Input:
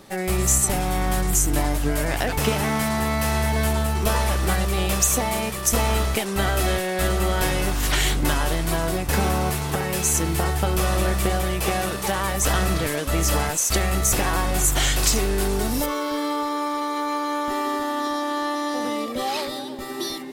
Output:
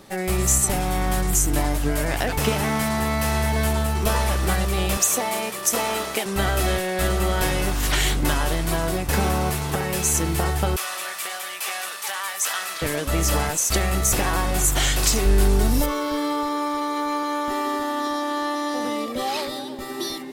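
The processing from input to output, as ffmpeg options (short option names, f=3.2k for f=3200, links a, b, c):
-filter_complex "[0:a]asettb=1/sr,asplit=3[a][b][c];[a]atrim=end=4.974[d];[b]atrim=start=4.97:end=6.26,asetpts=PTS-STARTPTS,afade=t=in:d=0.004:c=qsin,afade=t=out:st=1.286:d=0.004:c=qsin,highpass=270[e];[c]atrim=start=6.256[f];[d][e]acrossfade=d=0.004:c1=hsin:c2=qsin[g];[g][f]acrossfade=d=0.004:c1=qsin:c2=hsin,asettb=1/sr,asplit=3[h][i][j];[h]atrim=end=10.764[k];[i]atrim=start=10.76:end=12.82,asetpts=PTS-STARTPTS,afade=t=in:d=0.004:c=qsin,afade=t=out:st=2.056:d=0.004:c=qsin,highpass=1.2k[l];[j]atrim=start=12.816[m];[k][l]acrossfade=d=0.004:c1=hsin:c2=qsin[n];[n][m]acrossfade=d=0.004:c1=qsin:c2=hsin,asettb=1/sr,asplit=3[o][p][q];[o]atrim=end=15.254[r];[p]atrim=start=15.25:end=17.23,asetpts=PTS-STARTPTS,afade=t=in:d=0.004:c=qsin,afade=t=out:st=1.976:d=0.004:c=qsin,lowshelf=f=120:g=10[s];[q]atrim=start=17.226[t];[r][s]acrossfade=d=0.004:c1=hsin:c2=qsin[u];[u][t]acrossfade=d=0.004:c1=qsin:c2=hsin"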